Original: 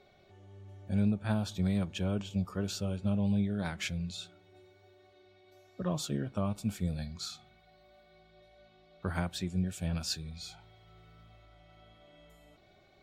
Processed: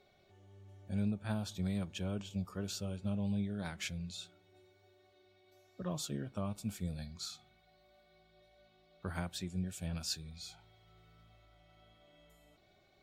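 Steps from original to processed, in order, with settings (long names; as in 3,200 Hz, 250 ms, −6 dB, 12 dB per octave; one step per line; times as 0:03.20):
high-shelf EQ 4,400 Hz +5.5 dB
level −6 dB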